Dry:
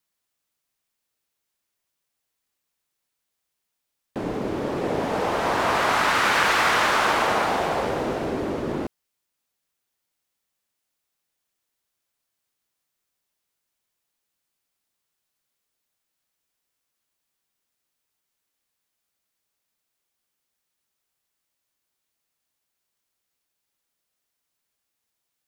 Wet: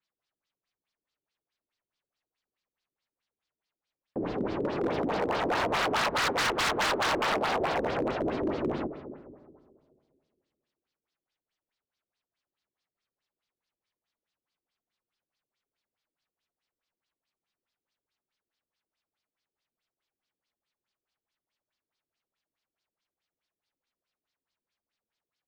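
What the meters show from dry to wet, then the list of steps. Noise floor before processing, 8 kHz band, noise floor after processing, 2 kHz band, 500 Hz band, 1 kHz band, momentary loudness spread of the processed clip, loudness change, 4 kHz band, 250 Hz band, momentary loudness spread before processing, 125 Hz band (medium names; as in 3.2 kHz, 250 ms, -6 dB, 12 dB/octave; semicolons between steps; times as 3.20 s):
-81 dBFS, -5.5 dB, under -85 dBFS, -8.0 dB, -4.0 dB, -7.0 dB, 10 LU, -6.0 dB, -4.5 dB, -3.5 dB, 11 LU, -5.0 dB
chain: algorithmic reverb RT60 2 s, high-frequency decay 0.4×, pre-delay 70 ms, DRR 10.5 dB; LFO low-pass sine 4.7 Hz 330–4900 Hz; wavefolder -15.5 dBFS; trim -6 dB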